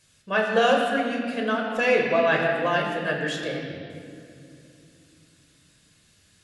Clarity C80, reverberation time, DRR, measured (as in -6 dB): 3.5 dB, 2.6 s, -0.5 dB